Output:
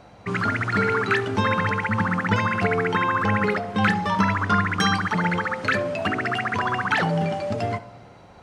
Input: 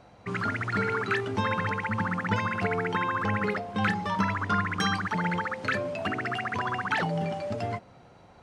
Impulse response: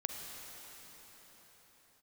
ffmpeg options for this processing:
-filter_complex "[0:a]bandreject=f=126.6:t=h:w=4,bandreject=f=253.2:t=h:w=4,bandreject=f=379.8:t=h:w=4,bandreject=f=506.4:t=h:w=4,bandreject=f=633:t=h:w=4,bandreject=f=759.6:t=h:w=4,bandreject=f=886.2:t=h:w=4,bandreject=f=1012.8:t=h:w=4,bandreject=f=1139.4:t=h:w=4,bandreject=f=1266:t=h:w=4,bandreject=f=1392.6:t=h:w=4,bandreject=f=1519.2:t=h:w=4,asplit=2[s0][s1];[1:a]atrim=start_sample=2205,afade=t=out:st=0.41:d=0.01,atrim=end_sample=18522,adelay=72[s2];[s1][s2]afir=irnorm=-1:irlink=0,volume=0.126[s3];[s0][s3]amix=inputs=2:normalize=0,volume=2"

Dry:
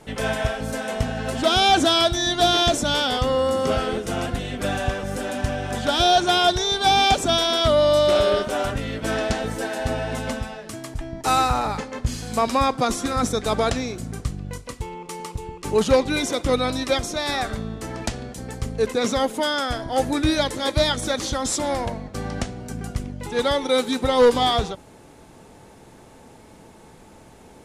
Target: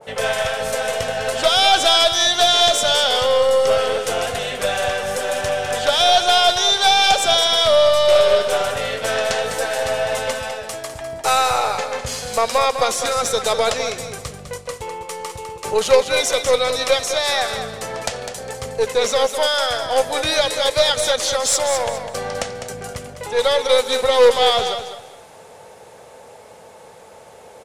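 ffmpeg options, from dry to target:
-filter_complex "[0:a]highpass=78,lowshelf=f=390:t=q:w=3:g=-8,asplit=2[s0][s1];[s1]acompressor=threshold=0.0501:ratio=6,volume=1.41[s2];[s0][s2]amix=inputs=2:normalize=0,aeval=exprs='1*(cos(1*acos(clip(val(0)/1,-1,1)))-cos(1*PI/2))+0.0708*(cos(6*acos(clip(val(0)/1,-1,1)))-cos(6*PI/2))+0.0158*(cos(8*acos(clip(val(0)/1,-1,1)))-cos(8*PI/2))':c=same,asplit=2[s3][s4];[s4]aecho=0:1:203|406|609:0.376|0.105|0.0295[s5];[s3][s5]amix=inputs=2:normalize=0,adynamicequalizer=threshold=0.0447:dfrequency=1600:dqfactor=0.7:tfrequency=1600:tqfactor=0.7:attack=5:release=100:ratio=0.375:range=3:mode=boostabove:tftype=highshelf,volume=0.668"

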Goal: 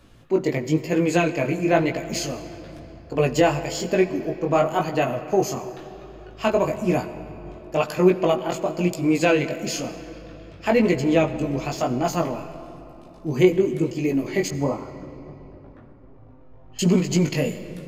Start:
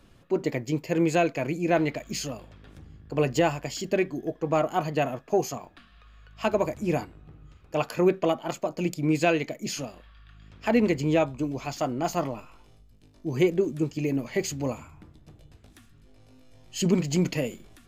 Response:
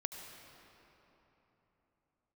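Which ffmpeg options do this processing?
-filter_complex "[0:a]asettb=1/sr,asplit=3[s0][s1][s2];[s0]atrim=end=14.484[s3];[s1]atrim=start=14.48:end=16.79,asetpts=PTS-STARTPTS,afade=t=in:d=0.004:c=qsin,afade=t=out:st=2.306:d=0.004:c=qsin,lowpass=f=1100:t=q:w=1.5[s4];[s2]atrim=start=16.786[s5];[s3][s4]acrossfade=d=0.004:c1=hsin:c2=qsin[s6];[s6][s5]acrossfade=d=0.004:c1=qsin:c2=hsin,flanger=delay=16:depth=5.9:speed=1,asplit=2[s7][s8];[1:a]atrim=start_sample=2205[s9];[s8][s9]afir=irnorm=-1:irlink=0,volume=0.708[s10];[s7][s10]amix=inputs=2:normalize=0,volume=1.5"

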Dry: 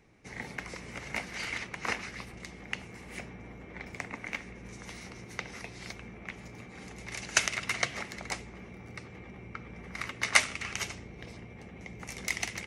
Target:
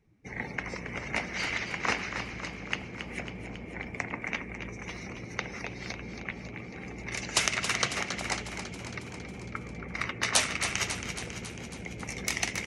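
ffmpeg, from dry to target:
-filter_complex "[0:a]afftfilt=real='re*lt(hypot(re,im),0.141)':imag='im*lt(hypot(re,im),0.141)':win_size=1024:overlap=0.75,afftdn=nr=17:nf=-51,asplit=9[s0][s1][s2][s3][s4][s5][s6][s7][s8];[s1]adelay=274,afreqshift=50,volume=0.355[s9];[s2]adelay=548,afreqshift=100,volume=0.226[s10];[s3]adelay=822,afreqshift=150,volume=0.145[s11];[s4]adelay=1096,afreqshift=200,volume=0.0933[s12];[s5]adelay=1370,afreqshift=250,volume=0.0596[s13];[s6]adelay=1644,afreqshift=300,volume=0.038[s14];[s7]adelay=1918,afreqshift=350,volume=0.0243[s15];[s8]adelay=2192,afreqshift=400,volume=0.0157[s16];[s0][s9][s10][s11][s12][s13][s14][s15][s16]amix=inputs=9:normalize=0,volume=1.68"

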